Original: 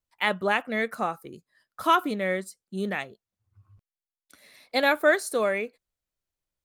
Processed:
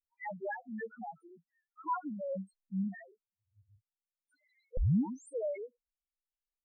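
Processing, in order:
0:02.31–0:02.88: spectral tilt −3 dB per octave
spectral peaks only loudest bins 1
0:04.77: tape start 0.57 s
level −4 dB

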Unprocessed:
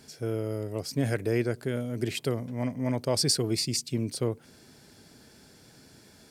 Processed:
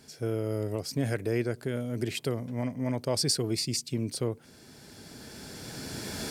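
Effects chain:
camcorder AGC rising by 11 dB per second
level −2 dB

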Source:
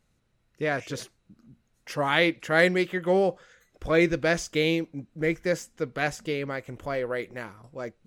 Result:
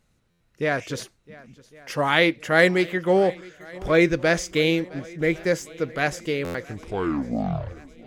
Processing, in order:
turntable brake at the end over 1.56 s
feedback echo with a long and a short gap by turns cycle 1,104 ms, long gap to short 1.5 to 1, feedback 50%, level −22 dB
buffer that repeats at 0:00.30/0:06.44, samples 512, times 8
level +3.5 dB

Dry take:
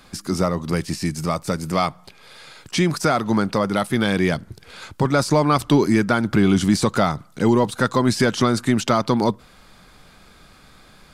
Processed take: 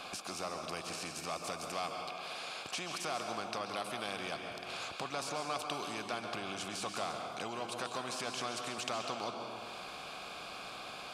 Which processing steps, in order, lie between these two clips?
high-shelf EQ 4,200 Hz +11.5 dB
downward compressor 2 to 1, threshold −40 dBFS, peak gain reduction 15.5 dB
formant filter a
dense smooth reverb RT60 1.3 s, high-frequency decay 0.85×, pre-delay 120 ms, DRR 7 dB
every bin compressed towards the loudest bin 2 to 1
level +8 dB

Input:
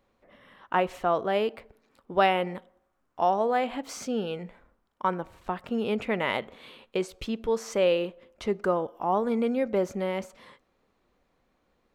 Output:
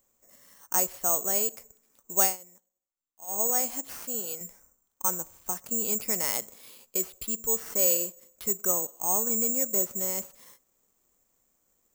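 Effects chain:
0:03.93–0:04.41: high-pass filter 340 Hz 6 dB per octave
bad sample-rate conversion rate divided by 6×, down none, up zero stuff
0:02.23–0:03.41: duck −20 dB, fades 0.14 s
level −8.5 dB

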